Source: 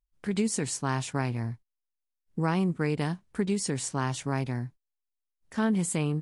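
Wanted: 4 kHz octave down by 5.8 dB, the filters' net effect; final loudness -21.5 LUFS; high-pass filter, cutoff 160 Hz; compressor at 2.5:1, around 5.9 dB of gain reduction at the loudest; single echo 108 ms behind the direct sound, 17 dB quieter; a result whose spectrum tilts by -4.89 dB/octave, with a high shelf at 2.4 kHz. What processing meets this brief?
high-pass 160 Hz; treble shelf 2.4 kHz -5 dB; peaking EQ 4 kHz -3 dB; compression 2.5:1, threshold -32 dBFS; delay 108 ms -17 dB; trim +15 dB

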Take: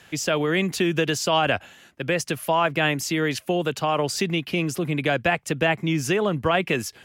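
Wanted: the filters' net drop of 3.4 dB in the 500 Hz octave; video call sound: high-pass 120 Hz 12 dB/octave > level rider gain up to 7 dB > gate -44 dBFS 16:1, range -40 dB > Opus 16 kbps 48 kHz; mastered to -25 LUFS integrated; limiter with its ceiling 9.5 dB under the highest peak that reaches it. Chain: peaking EQ 500 Hz -4.5 dB; peak limiter -17.5 dBFS; high-pass 120 Hz 12 dB/octave; level rider gain up to 7 dB; gate -44 dBFS 16:1, range -40 dB; trim +3.5 dB; Opus 16 kbps 48 kHz

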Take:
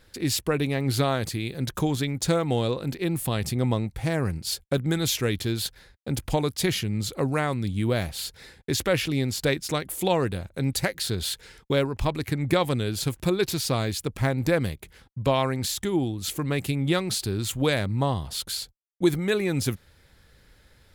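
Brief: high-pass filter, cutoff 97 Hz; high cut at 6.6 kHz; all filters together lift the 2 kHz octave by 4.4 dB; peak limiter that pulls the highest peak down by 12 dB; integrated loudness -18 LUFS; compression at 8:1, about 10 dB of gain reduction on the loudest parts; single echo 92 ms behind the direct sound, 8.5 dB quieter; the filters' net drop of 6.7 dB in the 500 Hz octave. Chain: high-pass 97 Hz; low-pass 6.6 kHz; peaking EQ 500 Hz -9 dB; peaking EQ 2 kHz +6 dB; compression 8:1, threshold -30 dBFS; peak limiter -31 dBFS; delay 92 ms -8.5 dB; trim +21.5 dB

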